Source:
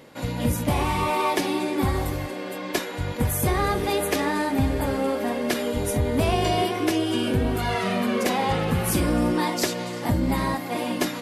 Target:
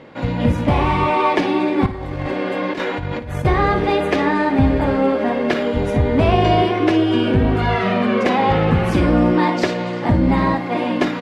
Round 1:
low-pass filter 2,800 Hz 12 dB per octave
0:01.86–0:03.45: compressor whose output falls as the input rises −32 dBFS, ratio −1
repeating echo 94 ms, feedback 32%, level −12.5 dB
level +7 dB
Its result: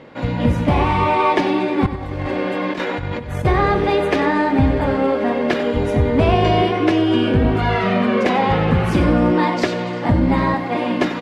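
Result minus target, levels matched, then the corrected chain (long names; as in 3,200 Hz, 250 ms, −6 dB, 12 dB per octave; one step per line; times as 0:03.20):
echo 38 ms late
low-pass filter 2,800 Hz 12 dB per octave
0:01.86–0:03.45: compressor whose output falls as the input rises −32 dBFS, ratio −1
repeating echo 56 ms, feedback 32%, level −12.5 dB
level +7 dB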